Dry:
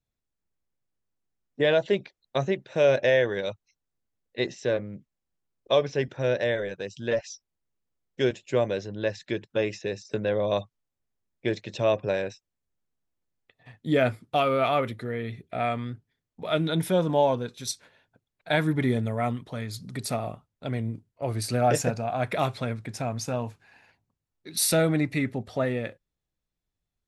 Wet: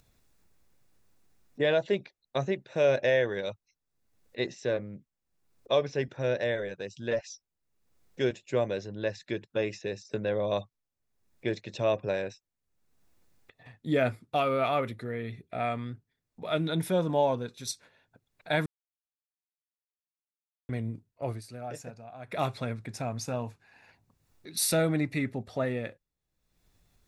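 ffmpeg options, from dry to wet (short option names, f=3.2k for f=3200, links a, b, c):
-filter_complex "[0:a]asplit=5[a][b][c][d][e];[a]atrim=end=18.66,asetpts=PTS-STARTPTS,afade=t=out:st=18.656:d=0.004:c=hsin[f];[b]atrim=start=18.66:end=20.69,asetpts=PTS-STARTPTS,volume=0[g];[c]atrim=start=20.69:end=21.42,asetpts=PTS-STARTPTS,afade=t=in:d=0.004:c=hsin,afade=t=out:st=0.6:d=0.13:silence=0.211349[h];[d]atrim=start=21.42:end=22.27,asetpts=PTS-STARTPTS,volume=-13.5dB[i];[e]atrim=start=22.27,asetpts=PTS-STARTPTS,afade=t=in:d=0.13:silence=0.211349[j];[f][g][h][i][j]concat=n=5:v=0:a=1,bandreject=f=3.1k:w=15,acompressor=mode=upward:threshold=-44dB:ratio=2.5,volume=-3.5dB"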